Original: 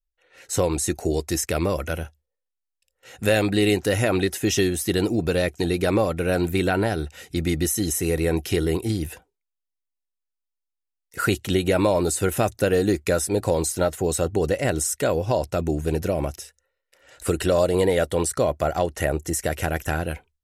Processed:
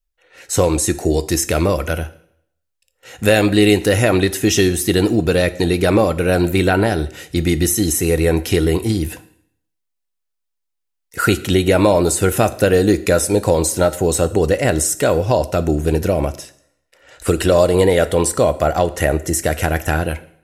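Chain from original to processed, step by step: 16.29–17.28 s: treble shelf 6.5 kHz -6 dB; plate-style reverb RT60 0.68 s, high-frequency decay 0.95×, DRR 13 dB; trim +6.5 dB

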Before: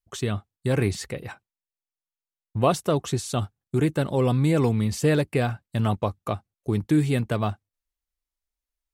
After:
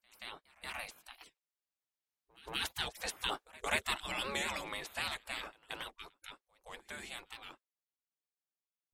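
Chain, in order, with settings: Doppler pass-by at 3.44 s, 12 m/s, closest 10 m; treble shelf 4.7 kHz -6 dB; spectral gate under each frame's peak -25 dB weak; pre-echo 178 ms -22.5 dB; warped record 78 rpm, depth 160 cents; trim +8 dB

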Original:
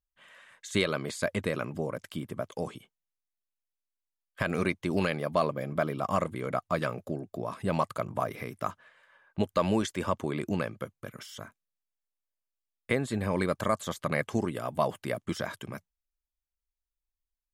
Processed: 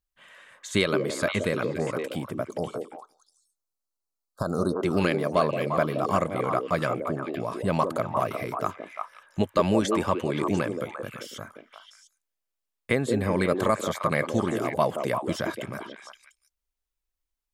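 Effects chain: 2.45–4.74 s: Chebyshev band-stop 1.4–4 kHz, order 4; repeats whose band climbs or falls 174 ms, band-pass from 380 Hz, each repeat 1.4 oct, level -0.5 dB; trim +3.5 dB

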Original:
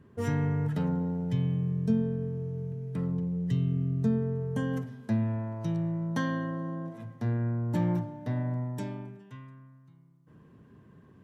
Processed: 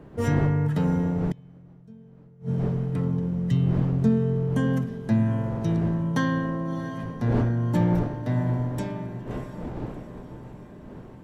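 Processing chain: wind noise 350 Hz -42 dBFS; echo that smears into a reverb 666 ms, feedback 58%, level -12 dB; 1.25–2.49 s: inverted gate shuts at -23 dBFS, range -27 dB; trim +5.5 dB

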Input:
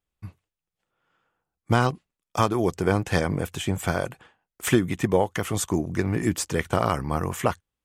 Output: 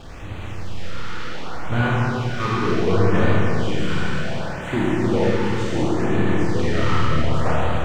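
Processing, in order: jump at every zero crossing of -21 dBFS; gate -18 dBFS, range -17 dB; compression 2.5:1, threshold -27 dBFS, peak gain reduction 9.5 dB; saturation -26 dBFS, distortion -9 dB; distance through air 160 m; Schroeder reverb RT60 3.8 s, combs from 26 ms, DRR -8 dB; LFO notch sine 0.68 Hz 610–5400 Hz; trim +6.5 dB

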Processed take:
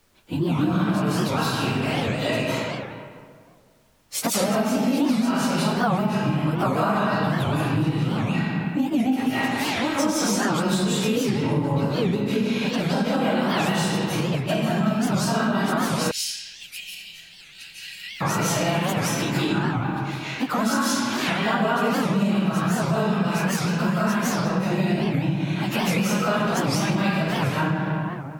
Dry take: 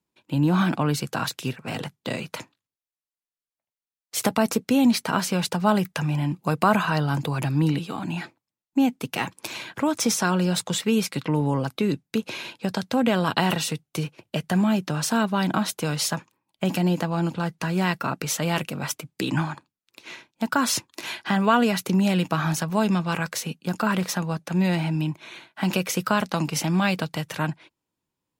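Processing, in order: phase randomisation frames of 50 ms; reverberation RT60 1.9 s, pre-delay 120 ms, DRR -10 dB; compression 5:1, threshold -20 dBFS, peak gain reduction 16 dB; 16.11–18.22 s: inverse Chebyshev high-pass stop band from 1.2 kHz, stop band 40 dB; added noise pink -62 dBFS; warped record 78 rpm, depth 250 cents

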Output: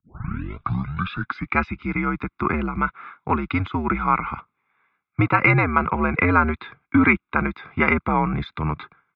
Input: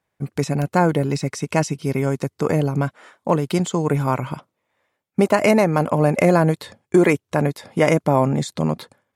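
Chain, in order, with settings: tape start-up on the opening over 1.63 s; band-stop 2 kHz, Q 19; comb 0.8 ms, depth 69%; mistuned SSB -85 Hz 200–3500 Hz; high-order bell 1.6 kHz +10.5 dB 1.2 oct; trim -3 dB

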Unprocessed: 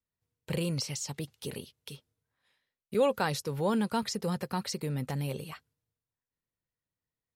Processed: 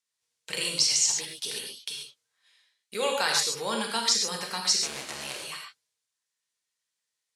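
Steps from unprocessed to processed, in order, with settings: 4.81–5.42 s: cycle switcher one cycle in 2, muted; frequency weighting ITU-R 468; gated-style reverb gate 160 ms flat, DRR 0 dB

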